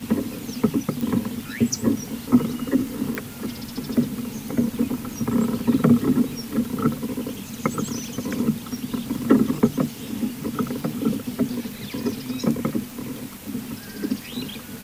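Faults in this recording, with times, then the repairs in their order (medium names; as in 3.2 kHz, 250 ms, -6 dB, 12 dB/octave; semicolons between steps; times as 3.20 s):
crackle 36 per s -30 dBFS
1.01 s: pop
3.15 s: pop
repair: de-click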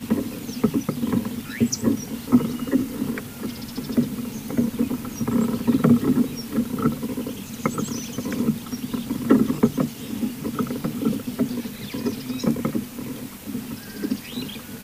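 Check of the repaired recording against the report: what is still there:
nothing left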